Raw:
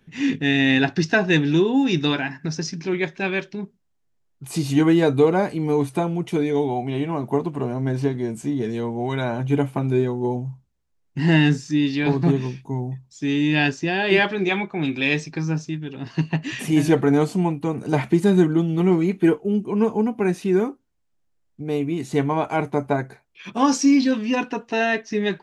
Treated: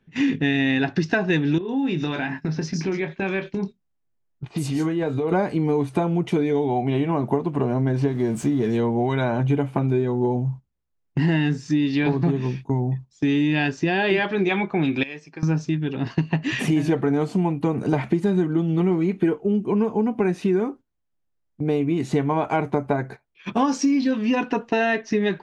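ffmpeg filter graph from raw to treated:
-filter_complex "[0:a]asettb=1/sr,asplit=3[a][b][c];[a]atrim=end=1.584[d];[b]atrim=start=1.58:end=5.32,asetpts=PTS-STARTPTS,afade=t=in:d=0.004:c=qsin,afade=t=out:st=3.736:d=0.004:c=qsin,acompressor=threshold=-28dB:ratio=5:attack=3.2:release=140:knee=1:detection=peak,asplit=2[e][f];[f]adelay=26,volume=-10.5dB[g];[e][g]amix=inputs=2:normalize=0,atrim=end_sample=164934,acrossover=split=4500[h][i];[i]adelay=110[j];[h][j]amix=inputs=2:normalize=0,atrim=end_sample=164934[k];[c]atrim=start=5.316[l];[d][k]acrossfade=d=0.004:c1=hsin:c2=qsin[m];[m][l]acrossfade=d=0.004:c1=qsin:c2=hsin,asettb=1/sr,asplit=3[n][o][p];[n]atrim=end=8.084[q];[o]atrim=start=8.08:end=8.77,asetpts=PTS-STARTPTS,afade=t=in:d=0.004:c=qsin,afade=t=out:st=0.686:d=0.004:c=qsin,aeval=exprs='val(0)+0.5*0.00794*sgn(val(0))':c=same,highshelf=f=7.5k:g=5[r];[p]atrim=start=8.766[s];[q][r]acrossfade=d=0.004:c1=hsin:c2=qsin[t];[t][s]acrossfade=d=0.004:c1=qsin:c2=hsin,asettb=1/sr,asplit=3[u][v][w];[u]atrim=end=15.034[x];[v]atrim=start=15.03:end=15.43,asetpts=PTS-STARTPTS,afade=t=in:d=0.004:c=qsin,afade=t=out:st=0.396:d=0.004:c=qsin,highpass=f=360:p=1,bandreject=f=3.8k:w=6.1,acompressor=threshold=-34dB:ratio=12:attack=3.2:release=140:knee=1:detection=peak[y];[w]atrim=start=15.426[z];[x][y]acrossfade=d=0.004:c1=hsin:c2=qsin[aa];[aa][z]acrossfade=d=0.004:c1=qsin:c2=hsin,agate=range=-12dB:threshold=-38dB:ratio=16:detection=peak,aemphasis=mode=reproduction:type=50kf,acompressor=threshold=-25dB:ratio=6,volume=7dB"

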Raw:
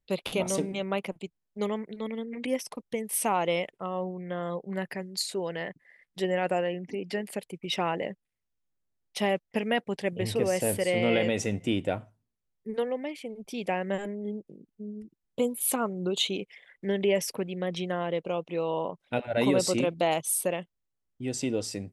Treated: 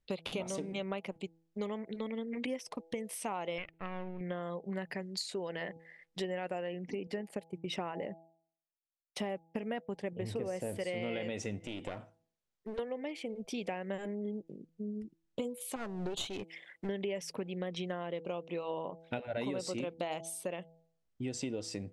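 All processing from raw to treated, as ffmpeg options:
-filter_complex "[0:a]asettb=1/sr,asplit=3[a][b][c];[a]atrim=end=3.584[d];[b]atrim=start=3.58:end=4.21,asetpts=PTS-STARTPTS,afade=t=in:d=0.004:c=qsin,afade=t=out:st=0.626:d=0.004:c=qsin,aeval=exprs='if(lt(val(0),0),0.251*val(0),val(0))':c=same,lowpass=f=2.4k:t=q:w=2.8,equalizer=f=680:t=o:w=2.6:g=-6.5[e];[c]atrim=start=4.206[f];[d][e]acrossfade=d=0.004:c1=hsin:c2=qsin[g];[g][f]acrossfade=d=0.004:c1=qsin:c2=hsin,asettb=1/sr,asplit=3[h][i][j];[h]atrim=end=7.074[k];[i]atrim=start=7.07:end=10.76,asetpts=PTS-STARTPTS,afade=t=in:d=0.004:c=qsin,afade=t=out:st=3.686:d=0.004:c=qsin,agate=range=-33dB:threshold=-40dB:ratio=3:release=100:detection=peak,equalizer=f=3.7k:w=0.59:g=-7.5[l];[j]atrim=start=10.756[m];[k][l]acrossfade=d=0.004:c1=hsin:c2=qsin[n];[n][m]acrossfade=d=0.004:c1=qsin:c2=hsin,asettb=1/sr,asplit=3[o][p][q];[o]atrim=end=11.664[r];[p]atrim=start=11.66:end=12.79,asetpts=PTS-STARTPTS,afade=t=in:d=0.004:c=qsin,afade=t=out:st=1.126:d=0.004:c=qsin,acompressor=threshold=-31dB:ratio=4:attack=3.2:release=140:knee=1:detection=peak,lowshelf=f=170:g=-10.5,aeval=exprs='clip(val(0),-1,0.00891)':c=same[s];[q]atrim=start=12.786[t];[r][s]acrossfade=d=0.004:c1=hsin:c2=qsin[u];[u][t]acrossfade=d=0.004:c1=qsin:c2=hsin,asettb=1/sr,asplit=3[v][w][x];[v]atrim=end=15.764[y];[w]atrim=start=15.76:end=16.89,asetpts=PTS-STARTPTS,afade=t=in:d=0.004:c=qsin,afade=t=out:st=1.126:d=0.004:c=qsin,highpass=58,aeval=exprs='clip(val(0),-1,0.0168)':c=same,highshelf=f=9.5k:g=10.5[z];[x]atrim=start=16.886[aa];[y][z]acrossfade=d=0.004:c1=hsin:c2=qsin[ab];[ab][aa]acrossfade=d=0.004:c1=qsin:c2=hsin,bandreject=f=164.2:t=h:w=4,bandreject=f=328.4:t=h:w=4,bandreject=f=492.6:t=h:w=4,bandreject=f=656.8:t=h:w=4,bandreject=f=821:t=h:w=4,acompressor=threshold=-36dB:ratio=5,lowpass=7.7k,volume=1dB"

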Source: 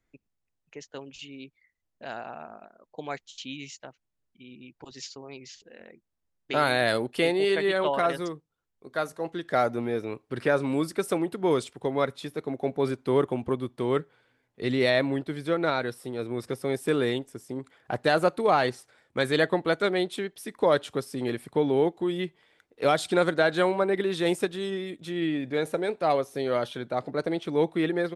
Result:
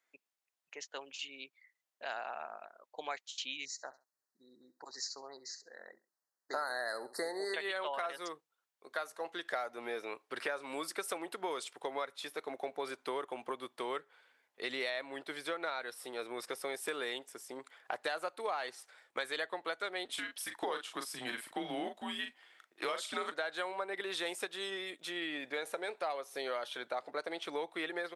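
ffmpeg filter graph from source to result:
-filter_complex "[0:a]asettb=1/sr,asplit=3[a][b][c];[a]atrim=end=3.654[d];[b]atrim=start=3.65:end=7.54,asetpts=PTS-STARTPTS,afade=t=in:d=0.004:c=qsin,afade=t=out:st=3.886:d=0.004:c=qsin,asuperstop=centerf=2800:order=20:qfactor=1.4,aecho=1:1:67|134:0.119|0.0297,atrim=end_sample=171549[e];[c]atrim=start=7.536[f];[d][e]acrossfade=d=0.004:c1=hsin:c2=qsin[g];[g][f]acrossfade=d=0.004:c1=qsin:c2=hsin,asettb=1/sr,asplit=3[h][i][j];[h]atrim=end=20.054[k];[i]atrim=start=20.05:end=23.32,asetpts=PTS-STARTPTS,afade=t=in:d=0.004:c=qsin,afade=t=out:st=3.266:d=0.004:c=qsin,afreqshift=-120,asplit=2[l][m];[m]adelay=39,volume=-7dB[n];[l][n]amix=inputs=2:normalize=0,atrim=end_sample=144207[o];[j]atrim=start=23.316[p];[k][o]acrossfade=d=0.004:c1=hsin:c2=qsin[q];[q][p]acrossfade=d=0.004:c1=qsin:c2=hsin,highpass=730,acompressor=threshold=-36dB:ratio=6,volume=1.5dB"

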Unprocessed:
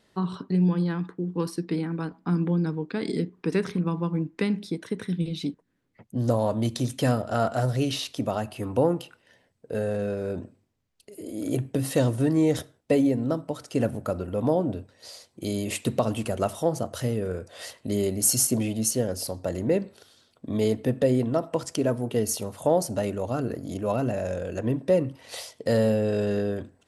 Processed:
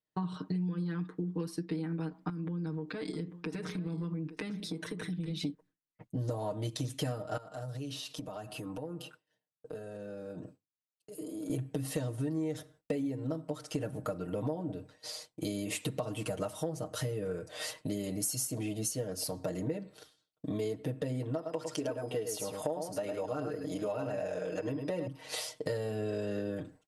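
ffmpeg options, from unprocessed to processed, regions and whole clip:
-filter_complex "[0:a]asettb=1/sr,asplit=3[a][b][c];[a]atrim=end=2.294[d];[b]atrim=start=2.29:end=5.45,asetpts=PTS-STARTPTS,afade=t=in:d=0.004:c=qsin,afade=t=out:st=3.156:d=0.004:c=qsin,acompressor=threshold=-34dB:ratio=6:attack=3.2:release=140:knee=1:detection=peak,aecho=1:1:845:0.158,atrim=end_sample=139356[e];[c]atrim=start=5.446[f];[d][e]acrossfade=d=0.004:c1=hsin:c2=qsin[g];[g][f]acrossfade=d=0.004:c1=qsin:c2=hsin,asettb=1/sr,asplit=3[h][i][j];[h]atrim=end=7.374[k];[i]atrim=start=7.37:end=11.5,asetpts=PTS-STARTPTS,afade=t=in:d=0.004:c=qsin,afade=t=out:st=4.126:d=0.004:c=qsin,highpass=f=98:w=0.5412,highpass=f=98:w=1.3066,equalizer=f=2.1k:t=o:w=0.32:g=-7.5,acompressor=threshold=-39dB:ratio=8:attack=3.2:release=140:knee=1:detection=peak[l];[j]atrim=start=11.496[m];[k][l]acrossfade=d=0.004:c1=hsin:c2=qsin[n];[n][m]acrossfade=d=0.004:c1=qsin:c2=hsin,asettb=1/sr,asplit=3[o][p][q];[o]atrim=end=21.354[r];[p]atrim=start=21.35:end=25.07,asetpts=PTS-STARTPTS,afade=t=in:d=0.004:c=qsin,afade=t=out:st=3.716:d=0.004:c=qsin,bass=f=250:g=-9,treble=f=4k:g=-4,aeval=exprs='val(0)+0.00178*sin(2*PI*5000*n/s)':c=same,aecho=1:1:105:0.473,atrim=end_sample=164052[s];[q]atrim=start=25.066[t];[r][s]acrossfade=d=0.004:c1=hsin:c2=qsin[u];[u][t]acrossfade=d=0.004:c1=qsin:c2=hsin,agate=range=-33dB:threshold=-46dB:ratio=3:detection=peak,aecho=1:1:6.5:0.98,acompressor=threshold=-31dB:ratio=6,volume=-1.5dB"

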